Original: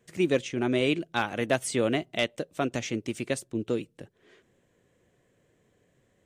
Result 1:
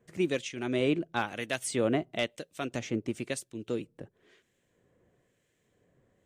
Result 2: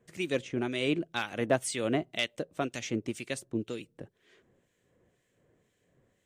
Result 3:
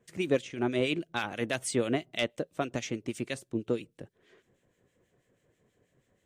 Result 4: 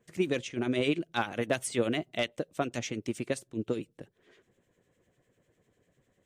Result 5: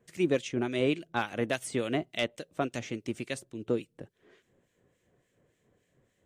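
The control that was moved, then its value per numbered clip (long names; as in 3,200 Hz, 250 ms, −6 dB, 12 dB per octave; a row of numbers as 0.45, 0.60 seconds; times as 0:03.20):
two-band tremolo in antiphase, speed: 1, 2, 6.2, 10, 3.5 Hertz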